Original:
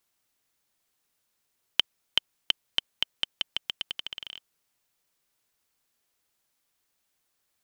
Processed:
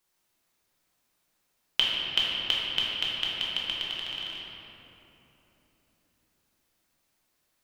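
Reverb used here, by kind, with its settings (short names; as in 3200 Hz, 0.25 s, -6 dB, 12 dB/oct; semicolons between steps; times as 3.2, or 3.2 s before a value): shoebox room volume 200 m³, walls hard, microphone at 0.95 m; gain -2.5 dB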